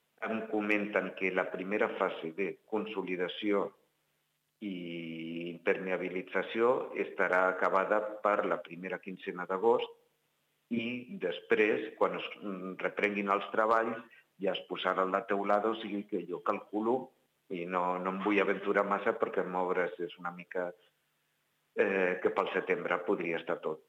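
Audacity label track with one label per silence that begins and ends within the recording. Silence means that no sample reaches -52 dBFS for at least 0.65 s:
3.710000	4.620000	silence
9.930000	10.710000	silence
20.740000	21.760000	silence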